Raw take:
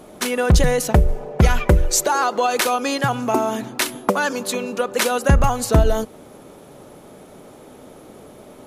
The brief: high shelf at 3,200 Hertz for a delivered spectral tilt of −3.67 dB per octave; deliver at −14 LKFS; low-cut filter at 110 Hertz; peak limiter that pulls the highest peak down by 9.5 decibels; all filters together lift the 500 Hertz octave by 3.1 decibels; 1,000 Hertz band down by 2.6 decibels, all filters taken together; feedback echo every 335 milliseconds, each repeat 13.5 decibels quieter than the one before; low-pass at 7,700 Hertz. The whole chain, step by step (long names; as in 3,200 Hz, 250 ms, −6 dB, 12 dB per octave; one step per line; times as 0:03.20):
high-pass filter 110 Hz
low-pass filter 7,700 Hz
parametric band 500 Hz +5 dB
parametric band 1,000 Hz −6.5 dB
high-shelf EQ 3,200 Hz +5 dB
brickwall limiter −10 dBFS
repeating echo 335 ms, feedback 21%, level −13.5 dB
level +7 dB